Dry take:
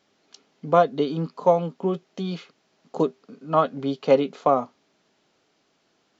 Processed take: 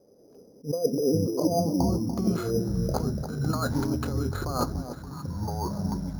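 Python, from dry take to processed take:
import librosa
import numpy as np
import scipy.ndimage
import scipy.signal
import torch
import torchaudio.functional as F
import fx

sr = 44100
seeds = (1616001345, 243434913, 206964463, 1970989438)

p1 = fx.env_lowpass_down(x, sr, base_hz=1700.0, full_db=-19.0)
p2 = fx.low_shelf(p1, sr, hz=160.0, db=10.0)
p3 = fx.over_compress(p2, sr, threshold_db=-28.0, ratio=-1.0)
p4 = fx.filter_sweep_lowpass(p3, sr, from_hz=500.0, to_hz=1500.0, start_s=1.23, end_s=2.52, q=6.2)
p5 = fx.echo_pitch(p4, sr, ms=185, semitones=-7, count=3, db_per_echo=-3.0)
p6 = p5 + fx.echo_alternate(p5, sr, ms=290, hz=880.0, feedback_pct=54, wet_db=-9.0, dry=0)
p7 = np.repeat(p6[::8], 8)[:len(p6)]
p8 = fx.attack_slew(p7, sr, db_per_s=290.0)
y = p8 * librosa.db_to_amplitude(-4.5)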